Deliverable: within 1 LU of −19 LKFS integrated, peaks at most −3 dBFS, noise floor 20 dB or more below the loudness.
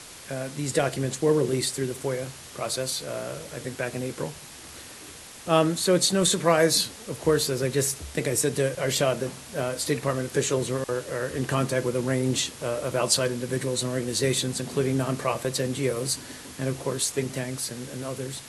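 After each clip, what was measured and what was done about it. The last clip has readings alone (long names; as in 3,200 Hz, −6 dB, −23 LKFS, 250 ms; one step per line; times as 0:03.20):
background noise floor −44 dBFS; target noise floor −46 dBFS; integrated loudness −26.0 LKFS; sample peak −6.5 dBFS; target loudness −19.0 LKFS
→ noise reduction from a noise print 6 dB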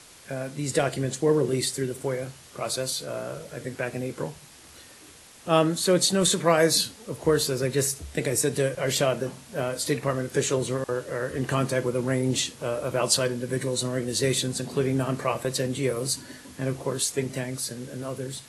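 background noise floor −50 dBFS; integrated loudness −26.5 LKFS; sample peak −6.5 dBFS; target loudness −19.0 LKFS
→ level +7.5 dB
brickwall limiter −3 dBFS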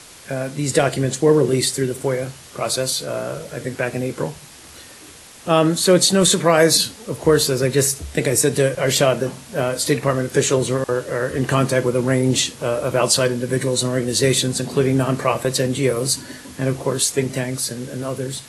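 integrated loudness −19.0 LKFS; sample peak −3.0 dBFS; background noise floor −42 dBFS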